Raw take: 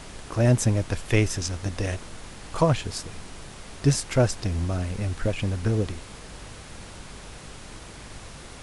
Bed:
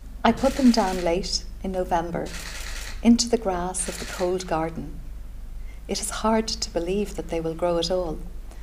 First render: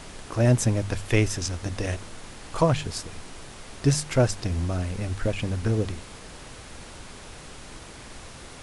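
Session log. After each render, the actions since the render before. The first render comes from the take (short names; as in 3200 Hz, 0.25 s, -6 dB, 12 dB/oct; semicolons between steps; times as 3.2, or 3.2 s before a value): de-hum 50 Hz, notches 4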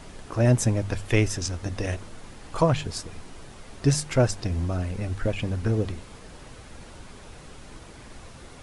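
denoiser 6 dB, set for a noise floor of -44 dBFS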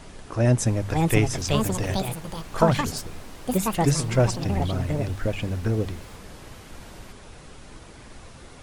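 echoes that change speed 0.66 s, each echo +5 st, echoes 2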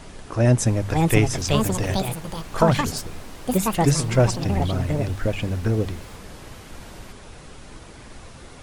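gain +2.5 dB; limiter -3 dBFS, peak gain reduction 2 dB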